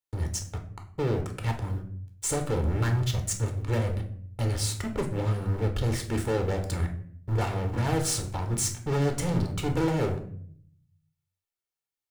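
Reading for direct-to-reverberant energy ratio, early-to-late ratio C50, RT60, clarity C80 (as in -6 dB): 4.0 dB, 10.0 dB, 0.55 s, 14.0 dB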